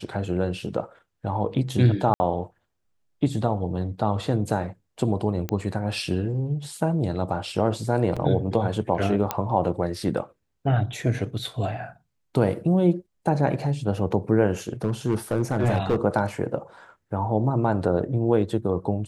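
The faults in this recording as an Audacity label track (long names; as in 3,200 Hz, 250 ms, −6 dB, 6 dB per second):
2.140000	2.200000	drop-out 60 ms
5.490000	5.490000	click −13 dBFS
8.160000	8.170000	drop-out 5.7 ms
9.310000	9.310000	click −8 dBFS
14.690000	15.960000	clipping −16.5 dBFS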